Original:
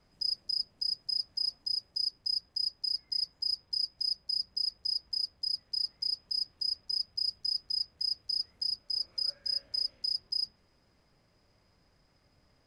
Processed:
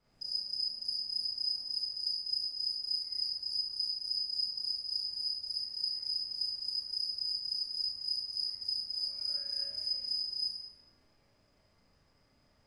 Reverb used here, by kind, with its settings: Schroeder reverb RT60 0.76 s, combs from 27 ms, DRR -7 dB; gain -8.5 dB

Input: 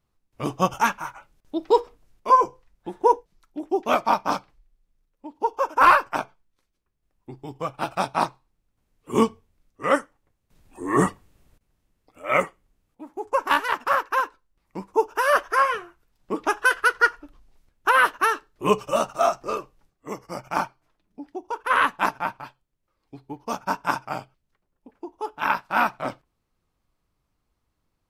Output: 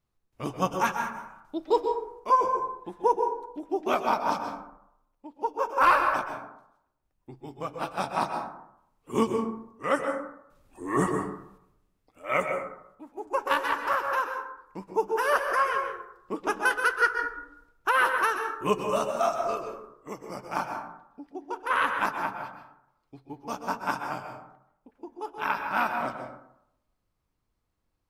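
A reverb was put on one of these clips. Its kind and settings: plate-style reverb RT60 0.76 s, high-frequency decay 0.4×, pre-delay 0.115 s, DRR 4.5 dB; gain -5.5 dB

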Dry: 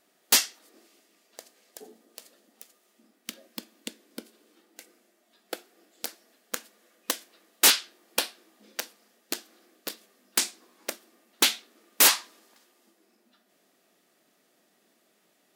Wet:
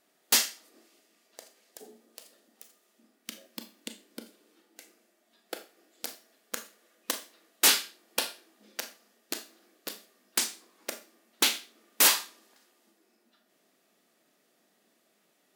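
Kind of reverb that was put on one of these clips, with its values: Schroeder reverb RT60 0.33 s, combs from 27 ms, DRR 8 dB; gain -3 dB

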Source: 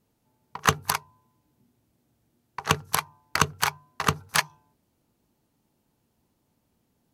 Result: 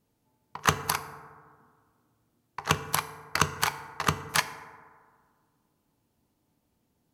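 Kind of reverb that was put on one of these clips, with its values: FDN reverb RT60 1.8 s, low-frequency decay 0.95×, high-frequency decay 0.35×, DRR 10 dB; gain -2.5 dB

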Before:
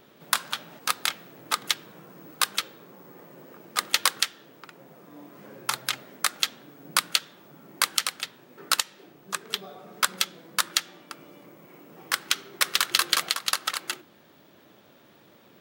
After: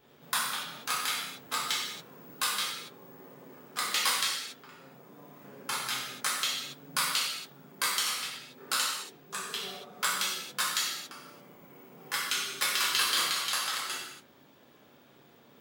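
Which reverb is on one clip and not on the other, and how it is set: non-linear reverb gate 0.31 s falling, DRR -8 dB; gain -11.5 dB

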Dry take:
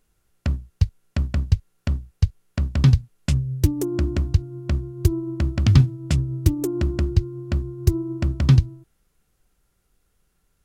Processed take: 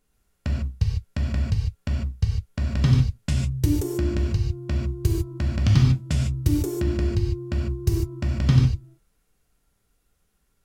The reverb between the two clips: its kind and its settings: non-linear reverb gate 0.17 s flat, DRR -1.5 dB; gain -4.5 dB

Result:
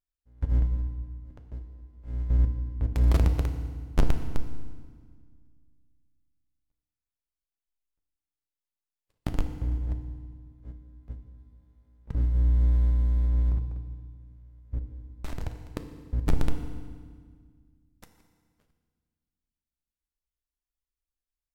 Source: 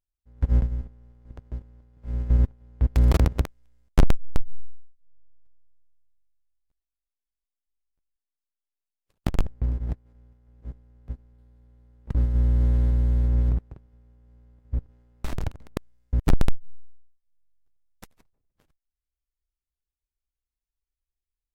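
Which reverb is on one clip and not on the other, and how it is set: FDN reverb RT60 1.7 s, low-frequency decay 1.45×, high-frequency decay 0.9×, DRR 6 dB; gain -5.5 dB

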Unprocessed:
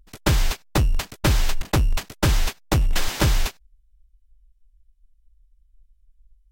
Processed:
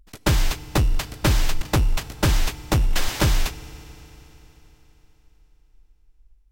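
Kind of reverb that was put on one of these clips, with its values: FDN reverb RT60 4 s, high-frequency decay 0.95×, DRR 15 dB

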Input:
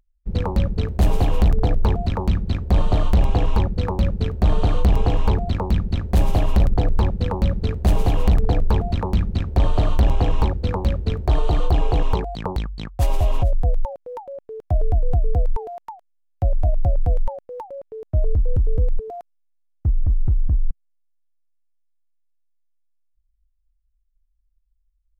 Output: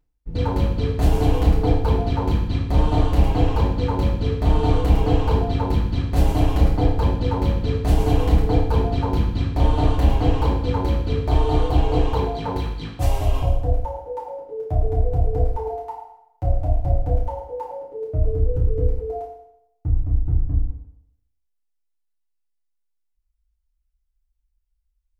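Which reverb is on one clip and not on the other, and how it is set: FDN reverb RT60 0.8 s, low-frequency decay 0.9×, high-frequency decay 0.9×, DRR -7.5 dB; gain -7.5 dB

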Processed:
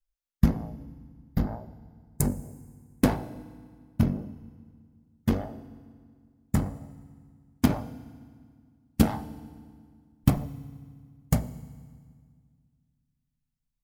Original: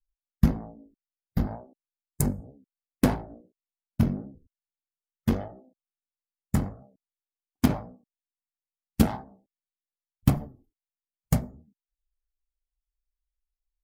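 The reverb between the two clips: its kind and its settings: FDN reverb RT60 1.9 s, low-frequency decay 1.35×, high-frequency decay 0.85×, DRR 15 dB

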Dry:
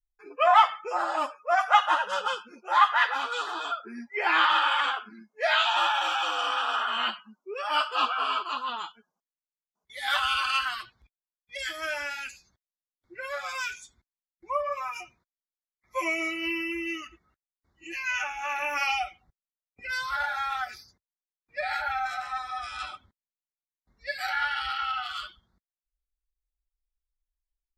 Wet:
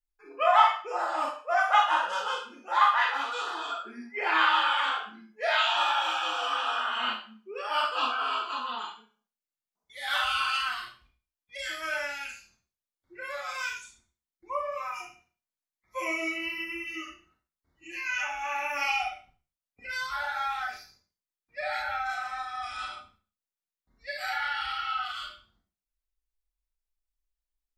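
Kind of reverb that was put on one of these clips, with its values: Schroeder reverb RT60 0.37 s, combs from 25 ms, DRR -0.5 dB; gain -4.5 dB

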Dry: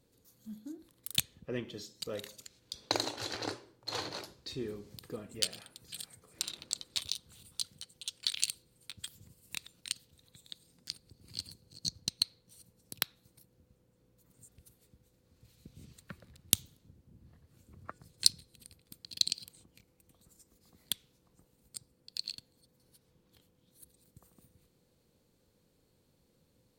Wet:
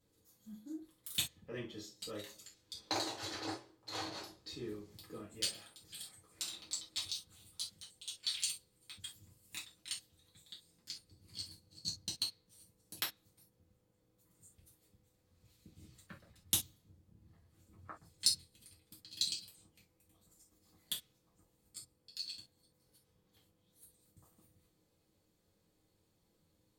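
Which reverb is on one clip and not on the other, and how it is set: non-linear reverb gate 90 ms falling, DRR -6 dB; gain -10.5 dB

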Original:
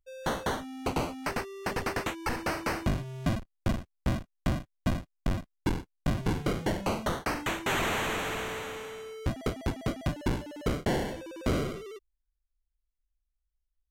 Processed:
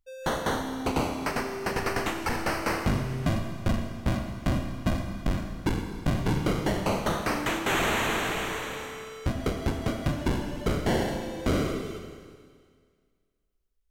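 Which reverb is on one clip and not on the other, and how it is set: Schroeder reverb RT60 1.9 s, combs from 27 ms, DRR 4 dB; gain +2 dB

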